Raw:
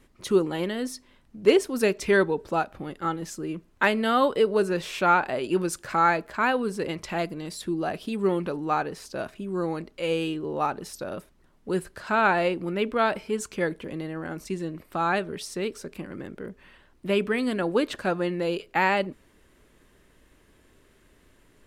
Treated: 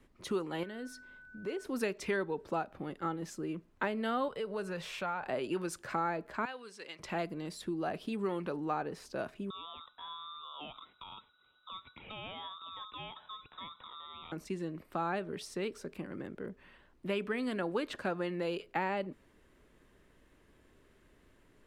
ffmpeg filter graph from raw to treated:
-filter_complex "[0:a]asettb=1/sr,asplit=3[a][b][c];[a]atrim=end=0.634[d];[b]atrim=start=0.63:end=1.65,asetpts=PTS-STARTPTS,afade=t=in:d=0.004:c=qsin,afade=t=out:st=1.016:d=0.004:c=qsin,bandreject=f=3k:w=29,acompressor=threshold=-40dB:ratio=2:attack=3.2:release=140:knee=1:detection=peak,aeval=exprs='val(0)+0.00447*sin(2*PI*1500*n/s)':c=same[e];[c]atrim=start=1.646[f];[d][e]acrossfade=d=0.004:c1=hsin:c2=qsin[g];[g][f]acrossfade=d=0.004:c1=qsin:c2=hsin,asettb=1/sr,asplit=3[h][i][j];[h]atrim=end=4.284[k];[i]atrim=start=4.28:end=5.27,asetpts=PTS-STARTPTS,afade=t=in:d=0.004:c=qsin,afade=t=out:st=0.986:d=0.004:c=qsin,equalizer=f=310:w=2:g=-13,acompressor=threshold=-31dB:ratio=2:attack=3.2:release=140:knee=1:detection=peak[l];[j]atrim=start=5.266[m];[k][l]acrossfade=d=0.004:c1=hsin:c2=qsin[n];[n][m]acrossfade=d=0.004:c1=qsin:c2=hsin,asettb=1/sr,asplit=3[o][p][q];[o]atrim=end=6.454[r];[p]atrim=start=6.45:end=6.99,asetpts=PTS-STARTPTS,afade=t=in:d=0.004:c=qsin,afade=t=out:st=0.536:d=0.004:c=qsin,lowpass=5k,aderivative,acontrast=87[s];[q]atrim=start=6.986[t];[r][s]acrossfade=d=0.004:c1=hsin:c2=qsin[u];[u][t]acrossfade=d=0.004:c1=qsin:c2=hsin,asettb=1/sr,asplit=3[v][w][x];[v]atrim=end=9.504[y];[w]atrim=start=9.5:end=14.32,asetpts=PTS-STARTPTS,afade=t=in:d=0.004:c=qsin,afade=t=out:st=4.816:d=0.004:c=qsin,lowpass=f=2.3k:t=q:w=0.5098,lowpass=f=2.3k:t=q:w=0.6013,lowpass=f=2.3k:t=q:w=0.9,lowpass=f=2.3k:t=q:w=2.563,afreqshift=-2700,acompressor=threshold=-38dB:ratio=2.5:attack=3.2:release=140:knee=1:detection=peak,aeval=exprs='val(0)*sin(2*PI*1200*n/s)':c=same[z];[x]atrim=start=14.316[aa];[y][z]acrossfade=d=0.004:c1=hsin:c2=qsin[ab];[ab][aa]acrossfade=d=0.004:c1=qsin:c2=hsin,highshelf=f=3.9k:g=-7,acrossover=split=110|790[ac][ad][ae];[ac]acompressor=threshold=-59dB:ratio=4[af];[ad]acompressor=threshold=-29dB:ratio=4[ag];[ae]acompressor=threshold=-32dB:ratio=4[ah];[af][ag][ah]amix=inputs=3:normalize=0,volume=-4.5dB"

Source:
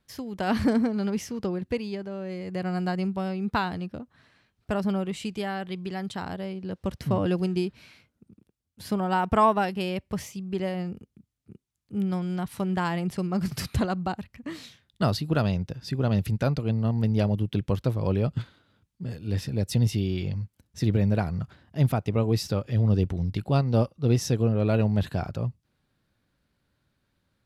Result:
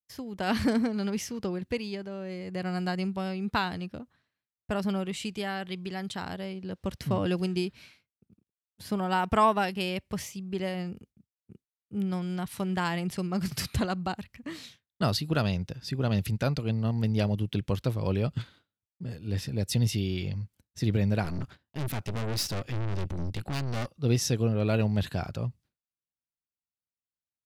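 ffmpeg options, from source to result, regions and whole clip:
-filter_complex "[0:a]asettb=1/sr,asplit=3[a][b][c];[a]atrim=end=21.244[d];[b]atrim=start=21.24:end=23.91,asetpts=PTS-STARTPTS,afade=t=in:d=0.004:c=qsin,afade=t=out:st=2.666:d=0.004:c=qsin,agate=range=-14dB:threshold=-53dB:ratio=16:release=100:detection=peak,acontrast=65,aeval=exprs='(tanh(22.4*val(0)+0.75)-tanh(0.75))/22.4':c=same[e];[c]atrim=start=23.906[f];[d][e]acrossfade=d=0.004:c1=hsin:c2=qsin[g];[g][f]acrossfade=d=0.004:c1=qsin:c2=hsin,agate=range=-33dB:threshold=-47dB:ratio=3:detection=peak,adynamicequalizer=threshold=0.00891:dfrequency=1600:dqfactor=0.7:tfrequency=1600:tqfactor=0.7:attack=5:release=100:ratio=0.375:range=3:mode=boostabove:tftype=highshelf,volume=-3dB"

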